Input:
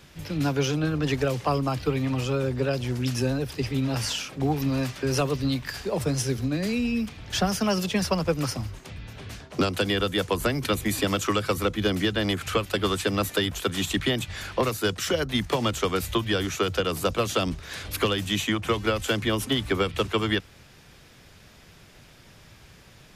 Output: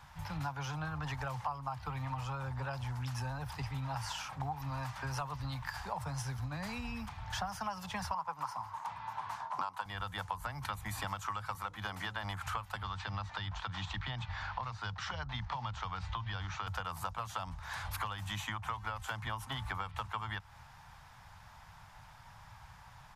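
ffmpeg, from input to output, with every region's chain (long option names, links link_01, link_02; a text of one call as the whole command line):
ffmpeg -i in.wav -filter_complex "[0:a]asettb=1/sr,asplit=3[link_01][link_02][link_03];[link_01]atrim=end=8.144[link_04];[link_02]atrim=start=8.14:end=9.86,asetpts=PTS-STARTPTS,afade=type=in:duration=0.004:curve=qsin,afade=type=out:start_time=1.716:duration=0.004:curve=qsin,highpass=220,equalizer=frequency=990:width=2.5:gain=13[link_05];[link_03]atrim=start=9.856[link_06];[link_04][link_05]acrossfade=duration=0.004:curve1=hsin:curve2=qsin[link_07];[link_07][link_06]acrossfade=duration=0.004:curve1=qsin:curve2=hsin,asettb=1/sr,asplit=3[link_08][link_09][link_10];[link_08]atrim=end=11.554[link_11];[link_09]atrim=start=11.55:end=12.24,asetpts=PTS-STARTPTS,afade=type=in:duration=0.004:curve=qsin,afade=type=out:start_time=0.686:duration=0.004:curve=qsin,highpass=frequency=190:poles=1,bandreject=frequency=60:width_type=h:width=6,bandreject=frequency=120:width_type=h:width=6,bandreject=frequency=180:width_type=h:width=6,bandreject=frequency=240:width_type=h:width=6,bandreject=frequency=300:width_type=h:width=6,bandreject=frequency=360:width_type=h:width=6,bandreject=frequency=420:width_type=h:width=6,bandreject=frequency=480:width_type=h:width=6,bandreject=frequency=540:width_type=h:width=6,acompressor=mode=upward:threshold=-28dB:ratio=2.5:attack=3.2:release=140:knee=2.83:detection=peak[link_12];[link_10]atrim=start=12.236[link_13];[link_11][link_12]acrossfade=duration=0.004:curve1=hsin:curve2=qsin[link_14];[link_14][link_13]acrossfade=duration=0.004:curve1=qsin:curve2=hsin,asettb=1/sr,asplit=3[link_15][link_16][link_17];[link_15]atrim=end=12.834[link_18];[link_16]atrim=start=12.83:end=16.67,asetpts=PTS-STARTPTS,afade=type=in:duration=0.004:curve=qsin,afade=type=out:start_time=3.836:duration=0.004:curve=qsin,lowpass=frequency=5100:width=0.5412,lowpass=frequency=5100:width=1.3066,acrossover=split=190|3000[link_19][link_20][link_21];[link_20]acompressor=threshold=-34dB:ratio=2:attack=3.2:release=140:knee=2.83:detection=peak[link_22];[link_19][link_22][link_21]amix=inputs=3:normalize=0[link_23];[link_17]atrim=start=16.666[link_24];[link_18][link_23]acrossfade=duration=0.004:curve1=hsin:curve2=qsin[link_25];[link_25][link_24]acrossfade=duration=0.004:curve1=qsin:curve2=hsin,firequalizer=gain_entry='entry(110,0);entry(230,-14);entry(370,-23);entry(870,12);entry(1200,4);entry(2500,-7)':delay=0.05:min_phase=1,acompressor=threshold=-33dB:ratio=6,volume=-2.5dB" out.wav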